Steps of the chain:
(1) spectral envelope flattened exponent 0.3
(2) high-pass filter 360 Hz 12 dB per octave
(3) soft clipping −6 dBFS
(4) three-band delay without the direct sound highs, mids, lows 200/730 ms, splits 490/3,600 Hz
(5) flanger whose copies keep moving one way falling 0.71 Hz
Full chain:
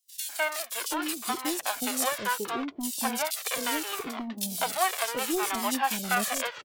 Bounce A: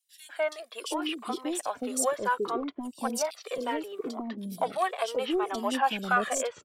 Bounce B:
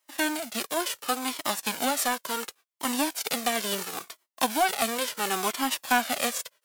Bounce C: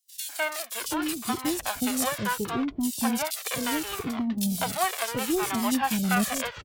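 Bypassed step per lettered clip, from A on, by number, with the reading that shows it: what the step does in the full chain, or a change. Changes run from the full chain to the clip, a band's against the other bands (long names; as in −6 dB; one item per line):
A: 1, 500 Hz band +6.5 dB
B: 4, change in momentary loudness spread +2 LU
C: 2, change in crest factor −2.5 dB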